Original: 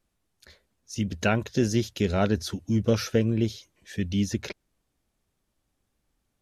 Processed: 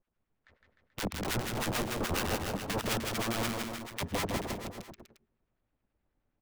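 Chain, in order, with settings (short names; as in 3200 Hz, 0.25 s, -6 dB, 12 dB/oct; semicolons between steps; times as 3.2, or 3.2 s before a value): switching dead time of 0.15 ms; LPF 2200 Hz 12 dB/oct; de-hum 45.48 Hz, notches 9; wrapped overs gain 23.5 dB; harmonic tremolo 9.4 Hz, depth 100%, crossover 1100 Hz; bouncing-ball echo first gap 0.16 s, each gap 0.9×, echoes 5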